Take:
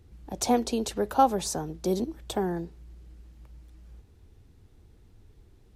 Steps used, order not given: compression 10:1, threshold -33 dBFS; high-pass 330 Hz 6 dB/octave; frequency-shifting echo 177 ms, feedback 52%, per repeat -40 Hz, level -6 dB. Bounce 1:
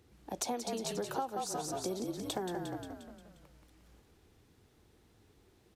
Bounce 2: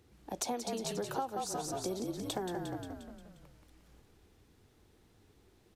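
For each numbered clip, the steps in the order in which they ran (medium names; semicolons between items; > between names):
frequency-shifting echo > high-pass > compression; high-pass > frequency-shifting echo > compression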